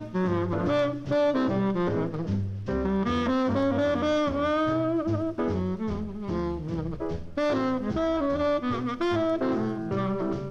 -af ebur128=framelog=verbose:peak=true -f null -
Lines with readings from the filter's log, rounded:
Integrated loudness:
  I:         -27.2 LUFS
  Threshold: -37.2 LUFS
Loudness range:
  LRA:         2.7 LU
  Threshold: -47.2 LUFS
  LRA low:   -28.9 LUFS
  LRA high:  -26.2 LUFS
True peak:
  Peak:      -14.7 dBFS